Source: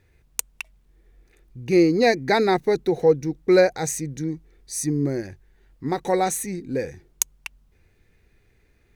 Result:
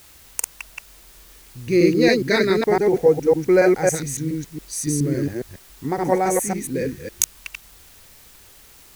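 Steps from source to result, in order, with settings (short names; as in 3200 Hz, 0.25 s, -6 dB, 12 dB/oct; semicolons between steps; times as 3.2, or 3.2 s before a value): reverse delay 0.139 s, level -0.5 dB; LFO notch square 0.38 Hz 800–3800 Hz; in parallel at -11 dB: requantised 6-bit, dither triangular; on the sum: gain -1.5 dB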